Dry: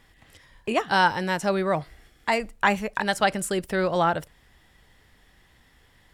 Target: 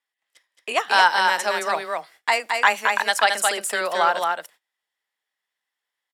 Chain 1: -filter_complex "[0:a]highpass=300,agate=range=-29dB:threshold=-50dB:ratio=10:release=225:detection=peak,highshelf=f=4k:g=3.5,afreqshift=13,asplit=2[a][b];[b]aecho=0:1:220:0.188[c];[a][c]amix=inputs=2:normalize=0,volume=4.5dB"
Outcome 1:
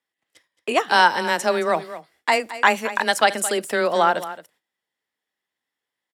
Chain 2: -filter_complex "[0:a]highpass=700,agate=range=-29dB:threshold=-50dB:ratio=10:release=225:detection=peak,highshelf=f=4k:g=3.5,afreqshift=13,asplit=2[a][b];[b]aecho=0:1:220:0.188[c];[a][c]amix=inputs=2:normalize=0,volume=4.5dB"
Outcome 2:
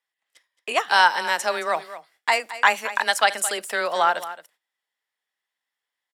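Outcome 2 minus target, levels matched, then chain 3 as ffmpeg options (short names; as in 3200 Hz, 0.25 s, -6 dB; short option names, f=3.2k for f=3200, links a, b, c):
echo-to-direct -10.5 dB
-filter_complex "[0:a]highpass=700,agate=range=-29dB:threshold=-50dB:ratio=10:release=225:detection=peak,highshelf=f=4k:g=3.5,afreqshift=13,asplit=2[a][b];[b]aecho=0:1:220:0.631[c];[a][c]amix=inputs=2:normalize=0,volume=4.5dB"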